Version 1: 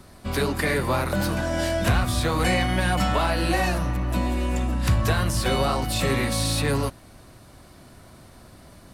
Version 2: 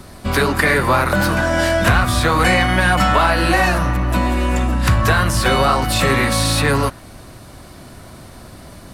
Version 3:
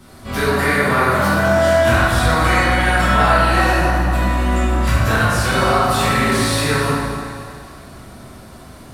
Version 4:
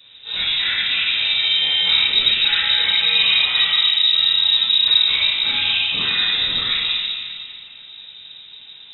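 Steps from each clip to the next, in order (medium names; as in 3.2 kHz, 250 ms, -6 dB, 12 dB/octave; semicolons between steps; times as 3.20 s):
dynamic bell 1.4 kHz, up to +7 dB, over -41 dBFS, Q 1; in parallel at +2 dB: compression, threshold -27 dBFS, peak gain reduction 11.5 dB; on the sum: trim +2.5 dB
thinning echo 263 ms, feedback 50%, level -12.5 dB; plate-style reverb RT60 1.9 s, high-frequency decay 0.55×, DRR -9.5 dB; trim -10 dB
octave divider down 1 oct, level +3 dB; frequency inversion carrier 3.8 kHz; trim -6 dB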